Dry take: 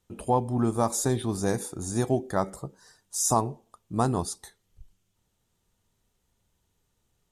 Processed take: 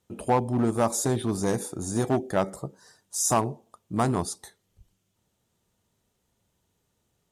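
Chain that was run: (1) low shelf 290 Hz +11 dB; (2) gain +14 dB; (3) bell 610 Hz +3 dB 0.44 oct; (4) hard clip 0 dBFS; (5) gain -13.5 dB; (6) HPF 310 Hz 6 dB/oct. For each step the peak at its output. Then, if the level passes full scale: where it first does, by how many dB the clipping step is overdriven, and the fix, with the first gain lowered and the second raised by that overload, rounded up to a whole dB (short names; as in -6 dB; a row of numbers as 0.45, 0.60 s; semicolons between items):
-6.0, +8.0, +8.0, 0.0, -13.5, -10.0 dBFS; step 2, 8.0 dB; step 2 +6 dB, step 5 -5.5 dB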